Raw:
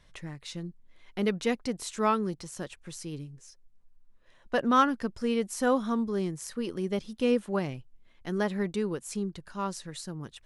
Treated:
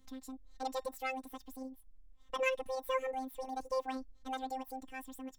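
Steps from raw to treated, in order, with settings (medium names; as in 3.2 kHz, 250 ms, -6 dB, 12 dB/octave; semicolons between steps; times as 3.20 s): bass shelf 410 Hz +8.5 dB; feedback comb 470 Hz, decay 0.32 s, harmonics all, mix 50%; robot voice 135 Hz; wide varispeed 1.94×; trim -4.5 dB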